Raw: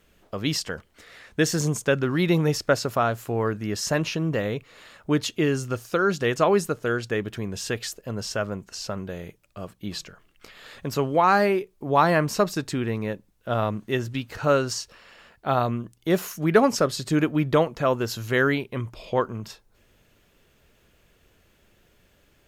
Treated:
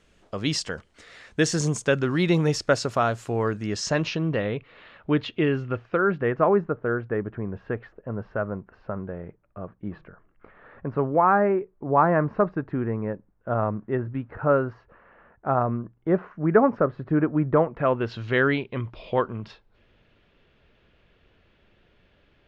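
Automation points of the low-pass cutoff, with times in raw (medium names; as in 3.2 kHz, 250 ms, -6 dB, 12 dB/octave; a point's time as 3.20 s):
low-pass 24 dB/octave
3.62 s 8.8 kHz
4.55 s 3.3 kHz
5.40 s 3.3 kHz
6.55 s 1.6 kHz
17.56 s 1.6 kHz
18.22 s 3.9 kHz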